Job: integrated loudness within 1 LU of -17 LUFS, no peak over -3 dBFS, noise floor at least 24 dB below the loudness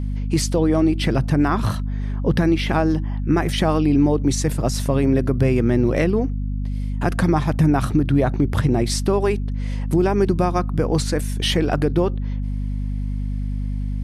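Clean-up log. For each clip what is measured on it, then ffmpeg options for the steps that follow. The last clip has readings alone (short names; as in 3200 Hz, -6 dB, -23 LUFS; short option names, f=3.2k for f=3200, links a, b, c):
hum 50 Hz; harmonics up to 250 Hz; hum level -21 dBFS; loudness -20.5 LUFS; peak -4.5 dBFS; loudness target -17.0 LUFS
-> -af "bandreject=f=50:t=h:w=4,bandreject=f=100:t=h:w=4,bandreject=f=150:t=h:w=4,bandreject=f=200:t=h:w=4,bandreject=f=250:t=h:w=4"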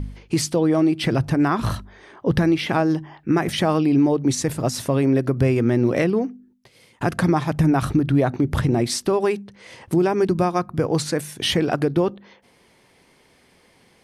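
hum none; loudness -21.0 LUFS; peak -6.0 dBFS; loudness target -17.0 LUFS
-> -af "volume=4dB,alimiter=limit=-3dB:level=0:latency=1"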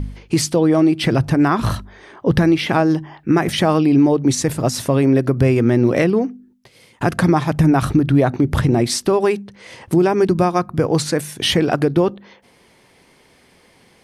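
loudness -17.0 LUFS; peak -3.0 dBFS; noise floor -53 dBFS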